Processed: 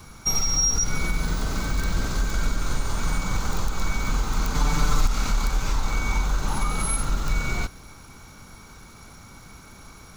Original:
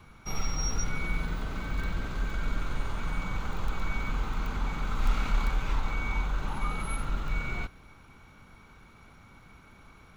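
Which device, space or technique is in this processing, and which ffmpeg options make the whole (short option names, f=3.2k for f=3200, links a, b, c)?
over-bright horn tweeter: -filter_complex "[0:a]highshelf=f=4k:t=q:w=1.5:g=10,alimiter=limit=-21.5dB:level=0:latency=1:release=174,asettb=1/sr,asplit=3[a][b][c];[a]atrim=end=4.544[d];[b]atrim=start=4.54:end=5.06,asetpts=PTS-STARTPTS,afade=t=in:d=0.004:c=qsin,afade=t=out:st=0.516:d=0.004:c=qsin,aecho=1:1:6.8:0.99,atrim=end_sample=22932[e];[c]atrim=start=5.056[f];[d][e]acrossfade=d=0.004:c1=hsin:c2=qsin[g];[g][f]acrossfade=d=0.004:c1=qsin:c2=hsin,volume=8dB"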